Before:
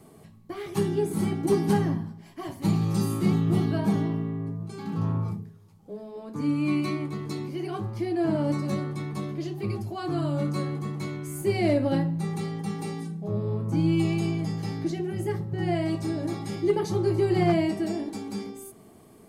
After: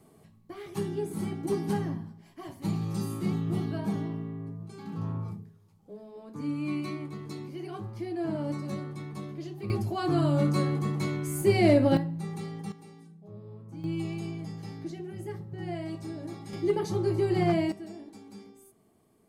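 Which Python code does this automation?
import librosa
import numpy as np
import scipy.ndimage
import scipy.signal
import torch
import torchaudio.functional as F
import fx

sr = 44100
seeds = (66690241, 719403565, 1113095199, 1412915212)

y = fx.gain(x, sr, db=fx.steps((0.0, -6.5), (9.7, 2.5), (11.97, -6.0), (12.72, -17.0), (13.84, -9.0), (16.53, -3.0), (17.72, -13.5)))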